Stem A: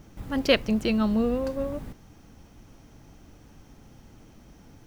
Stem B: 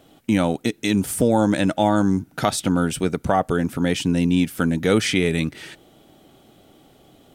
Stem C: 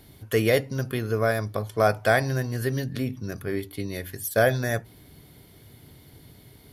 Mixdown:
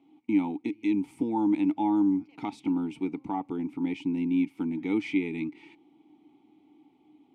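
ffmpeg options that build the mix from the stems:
ffmpeg -i stem1.wav -i stem2.wav -i stem3.wav -filter_complex "[0:a]highpass=430,asoftclip=type=hard:threshold=-16dB,adelay=1800,volume=-13dB[link_01];[1:a]volume=1dB[link_02];[2:a]equalizer=frequency=520:width=0.98:gain=-12.5,adelay=350,volume=-19.5dB[link_03];[link_01][link_03]amix=inputs=2:normalize=0,alimiter=level_in=13dB:limit=-24dB:level=0:latency=1,volume=-13dB,volume=0dB[link_04];[link_02][link_04]amix=inputs=2:normalize=0,asplit=3[link_05][link_06][link_07];[link_05]bandpass=frequency=300:width_type=q:width=8,volume=0dB[link_08];[link_06]bandpass=frequency=870:width_type=q:width=8,volume=-6dB[link_09];[link_07]bandpass=frequency=2240:width_type=q:width=8,volume=-9dB[link_10];[link_08][link_09][link_10]amix=inputs=3:normalize=0" out.wav

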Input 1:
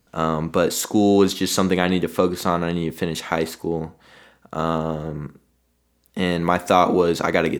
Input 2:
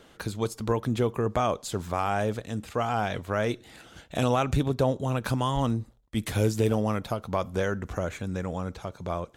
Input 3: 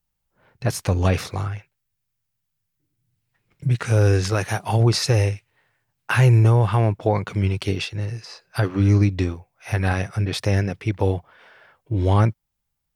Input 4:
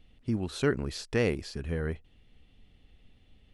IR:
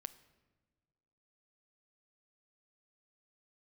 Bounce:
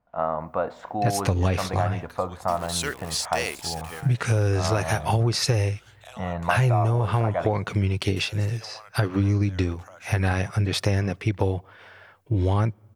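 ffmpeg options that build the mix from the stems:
-filter_complex "[0:a]asubboost=boost=11.5:cutoff=83,lowpass=1100,lowshelf=frequency=520:width_type=q:width=3:gain=-8,volume=-5dB,asplit=3[link_01][link_02][link_03];[link_02]volume=-4.5dB[link_04];[1:a]highpass=frequency=690:width=0.5412,highpass=frequency=690:width=1.3066,acompressor=threshold=-46dB:ratio=2,adelay=1900,volume=-3.5dB[link_05];[2:a]adelay=400,volume=1.5dB,asplit=2[link_06][link_07];[link_07]volume=-17dB[link_08];[3:a]highpass=frequency=900:poles=1,crystalizer=i=5.5:c=0,acrusher=bits=6:mix=0:aa=0.000001,adelay=2200,volume=0dB[link_09];[link_03]apad=whole_len=252884[link_10];[link_09][link_10]sidechaingate=range=-12dB:threshold=-51dB:ratio=16:detection=peak[link_11];[4:a]atrim=start_sample=2205[link_12];[link_04][link_08]amix=inputs=2:normalize=0[link_13];[link_13][link_12]afir=irnorm=-1:irlink=0[link_14];[link_01][link_05][link_06][link_11][link_14]amix=inputs=5:normalize=0,acompressor=threshold=-18dB:ratio=6"

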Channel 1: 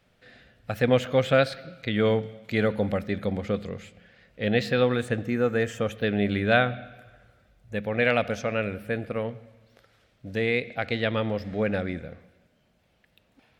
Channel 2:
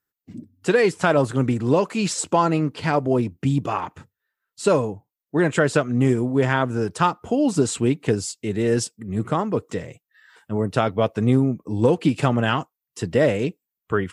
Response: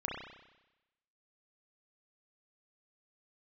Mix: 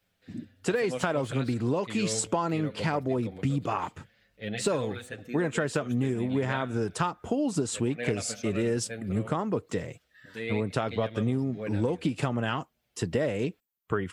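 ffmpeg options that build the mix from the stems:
-filter_complex "[0:a]highshelf=frequency=3300:gain=9.5,asplit=2[link_01][link_02];[link_02]adelay=7,afreqshift=-0.44[link_03];[link_01][link_03]amix=inputs=2:normalize=1,volume=-8.5dB[link_04];[1:a]volume=-1.5dB[link_05];[link_04][link_05]amix=inputs=2:normalize=0,acompressor=threshold=-24dB:ratio=6"

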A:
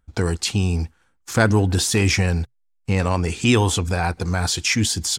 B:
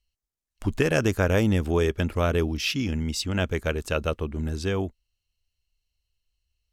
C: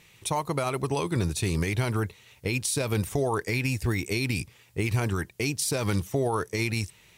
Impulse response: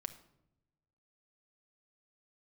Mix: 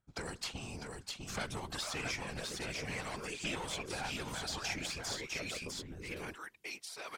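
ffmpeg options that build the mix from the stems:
-filter_complex "[0:a]aeval=exprs='(tanh(3.55*val(0)+0.75)-tanh(0.75))/3.55':channel_layout=same,volume=-1dB,asplit=3[link_01][link_02][link_03];[link_02]volume=-10dB[link_04];[link_03]volume=-5.5dB[link_05];[1:a]tiltshelf=frequency=970:gain=4,acompressor=threshold=-26dB:ratio=6,adelay=1450,volume=-5dB,asplit=2[link_06][link_07];[link_07]volume=-14.5dB[link_08];[2:a]highpass=830,highshelf=frequency=4600:gain=-8.5,adelay=1250,volume=-2.5dB,asplit=2[link_09][link_10];[link_10]volume=-22dB[link_11];[3:a]atrim=start_sample=2205[link_12];[link_04][link_08]amix=inputs=2:normalize=0[link_13];[link_13][link_12]afir=irnorm=-1:irlink=0[link_14];[link_05][link_11]amix=inputs=2:normalize=0,aecho=0:1:652:1[link_15];[link_01][link_06][link_09][link_14][link_15]amix=inputs=5:normalize=0,lowshelf=frequency=110:gain=-9.5,acrossover=split=570|2000|5400[link_16][link_17][link_18][link_19];[link_16]acompressor=threshold=-39dB:ratio=4[link_20];[link_17]acompressor=threshold=-38dB:ratio=4[link_21];[link_18]acompressor=threshold=-35dB:ratio=4[link_22];[link_19]acompressor=threshold=-45dB:ratio=4[link_23];[link_20][link_21][link_22][link_23]amix=inputs=4:normalize=0,afftfilt=real='hypot(re,im)*cos(2*PI*random(0))':imag='hypot(re,im)*sin(2*PI*random(1))':win_size=512:overlap=0.75"

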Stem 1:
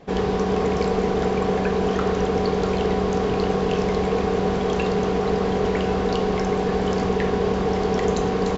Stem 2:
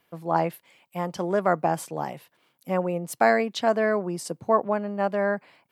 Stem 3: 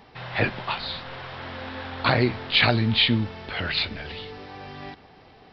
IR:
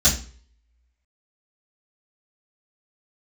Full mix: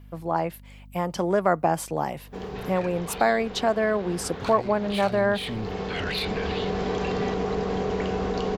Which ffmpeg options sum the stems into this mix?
-filter_complex "[0:a]adelay=2250,volume=-15.5dB[link_01];[1:a]volume=2.5dB[link_02];[2:a]asoftclip=type=tanh:threshold=-21dB,adelay=2400,volume=-6dB[link_03];[link_01][link_03]amix=inputs=2:normalize=0,alimiter=level_in=4dB:limit=-24dB:level=0:latency=1:release=53,volume=-4dB,volume=0dB[link_04];[link_02][link_04]amix=inputs=2:normalize=0,dynaudnorm=framelen=120:gausssize=17:maxgain=14dB,aeval=exprs='val(0)+0.00562*(sin(2*PI*50*n/s)+sin(2*PI*2*50*n/s)/2+sin(2*PI*3*50*n/s)/3+sin(2*PI*4*50*n/s)/4+sin(2*PI*5*50*n/s)/5)':channel_layout=same,acompressor=threshold=-29dB:ratio=1.5"

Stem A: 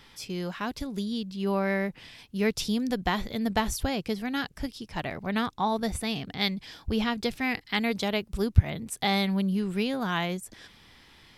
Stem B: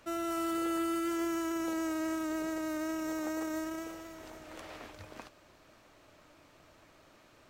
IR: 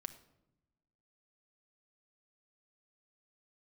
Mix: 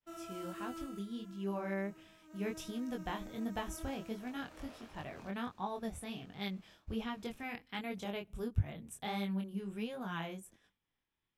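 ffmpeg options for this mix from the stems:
-filter_complex "[0:a]equalizer=frequency=4500:width=3.2:gain=-12.5,volume=-10dB,asplit=2[link_01][link_02];[link_02]volume=-14.5dB[link_03];[1:a]volume=6dB,afade=type=out:start_time=0.75:duration=0.31:silence=0.237137,afade=type=in:start_time=2.22:duration=0.25:silence=0.375837,afade=type=in:start_time=3.57:duration=0.33:silence=0.375837,asplit=2[link_04][link_05];[link_05]volume=-12dB[link_06];[2:a]atrim=start_sample=2205[link_07];[link_03][link_06]amix=inputs=2:normalize=0[link_08];[link_08][link_07]afir=irnorm=-1:irlink=0[link_09];[link_01][link_04][link_09]amix=inputs=3:normalize=0,agate=range=-33dB:threshold=-51dB:ratio=3:detection=peak,equalizer=frequency=2000:width=7.6:gain=-5,flanger=delay=20:depth=5.8:speed=1.4"

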